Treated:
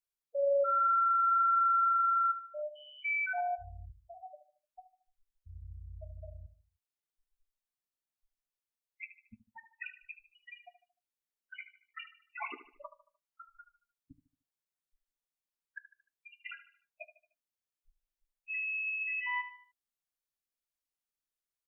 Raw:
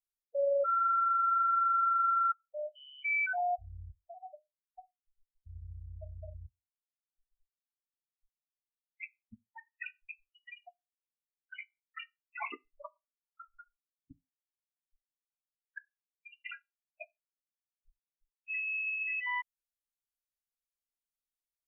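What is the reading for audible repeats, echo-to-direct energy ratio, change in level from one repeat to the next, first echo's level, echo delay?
3, -11.5 dB, -7.5 dB, -12.5 dB, 75 ms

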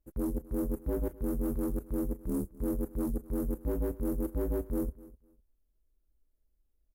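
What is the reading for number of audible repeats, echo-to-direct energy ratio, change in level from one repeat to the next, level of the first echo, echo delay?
2, -20.0 dB, -14.0 dB, -20.0 dB, 253 ms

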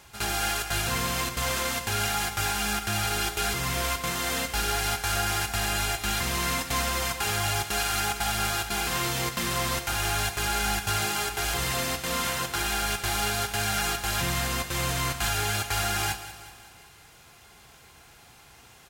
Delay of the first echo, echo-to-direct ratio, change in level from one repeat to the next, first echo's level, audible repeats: 188 ms, -12.0 dB, -5.5 dB, -13.5 dB, 4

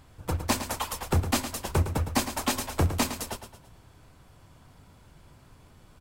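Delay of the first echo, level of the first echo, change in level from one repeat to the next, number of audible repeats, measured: 110 ms, -10.0 dB, -7.5 dB, 4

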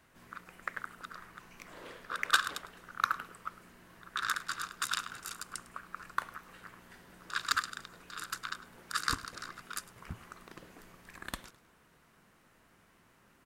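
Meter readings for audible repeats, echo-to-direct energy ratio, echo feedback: 2, -19.0 dB, 31%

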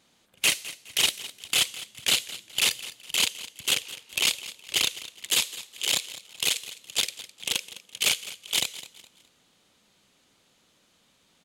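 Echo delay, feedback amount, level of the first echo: 208 ms, 33%, -16.0 dB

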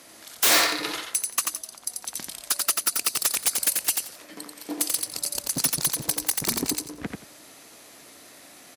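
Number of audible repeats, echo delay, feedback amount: 3, 88 ms, 18%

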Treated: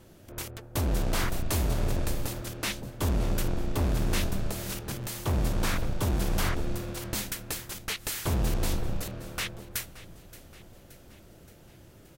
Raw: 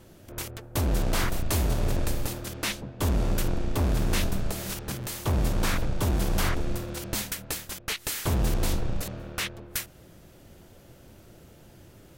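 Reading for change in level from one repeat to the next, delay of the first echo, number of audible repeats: -5.0 dB, 574 ms, 4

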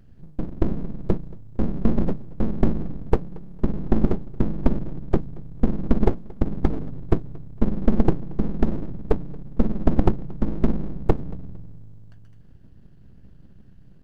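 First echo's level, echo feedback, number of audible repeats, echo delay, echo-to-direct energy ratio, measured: -23.0 dB, 31%, 2, 228 ms, -22.5 dB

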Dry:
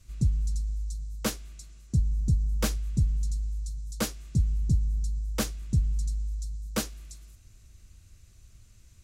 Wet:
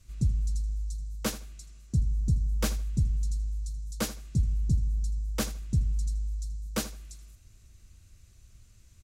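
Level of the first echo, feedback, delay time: -15.0 dB, 22%, 80 ms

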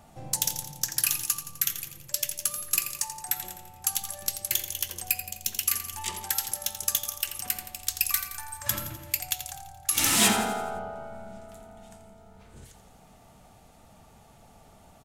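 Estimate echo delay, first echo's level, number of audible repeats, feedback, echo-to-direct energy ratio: 85 ms, -10.5 dB, 5, 53%, -9.0 dB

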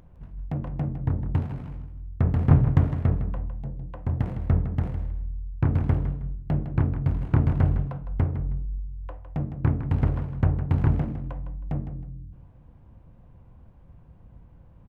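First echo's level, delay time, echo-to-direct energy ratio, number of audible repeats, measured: -10.5 dB, 158 ms, -10.0 dB, 2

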